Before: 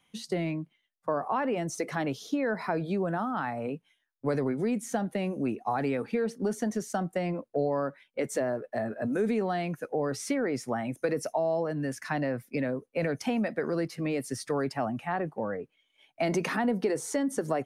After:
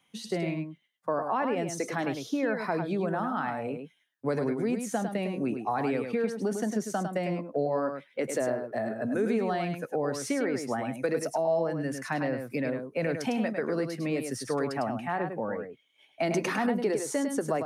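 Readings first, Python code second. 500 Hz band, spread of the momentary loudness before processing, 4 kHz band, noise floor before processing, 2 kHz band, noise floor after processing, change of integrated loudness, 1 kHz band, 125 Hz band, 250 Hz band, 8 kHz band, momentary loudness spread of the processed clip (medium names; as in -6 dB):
+0.5 dB, 5 LU, +1.0 dB, -75 dBFS, +1.0 dB, -69 dBFS, +0.5 dB, +1.0 dB, -0.5 dB, 0.0 dB, +1.0 dB, 5 LU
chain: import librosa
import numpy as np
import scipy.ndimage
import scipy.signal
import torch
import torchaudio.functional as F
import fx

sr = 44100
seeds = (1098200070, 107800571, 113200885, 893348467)

p1 = scipy.signal.sosfilt(scipy.signal.butter(2, 53.0, 'highpass', fs=sr, output='sos'), x)
p2 = fx.low_shelf(p1, sr, hz=71.0, db=-8.5)
y = p2 + fx.echo_single(p2, sr, ms=103, db=-6.5, dry=0)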